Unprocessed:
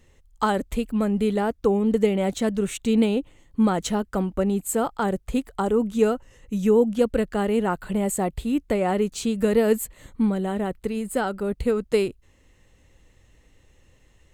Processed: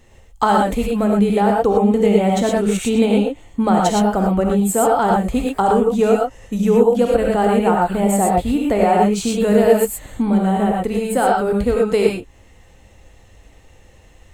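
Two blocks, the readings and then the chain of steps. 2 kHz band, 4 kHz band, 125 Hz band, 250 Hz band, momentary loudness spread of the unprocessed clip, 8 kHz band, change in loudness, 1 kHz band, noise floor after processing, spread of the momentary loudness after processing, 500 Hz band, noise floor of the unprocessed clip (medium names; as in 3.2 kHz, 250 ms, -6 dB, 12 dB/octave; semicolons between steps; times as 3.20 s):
+6.5 dB, +6.0 dB, +7.5 dB, +6.5 dB, 6 LU, +6.5 dB, +7.5 dB, +12.0 dB, -48 dBFS, 5 LU, +7.0 dB, -59 dBFS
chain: gated-style reverb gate 140 ms rising, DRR -1.5 dB; in parallel at +1.5 dB: compression, threshold -24 dBFS, peak gain reduction 14 dB; on the sum: peaking EQ 750 Hz +6.5 dB 0.62 oct; trim -1 dB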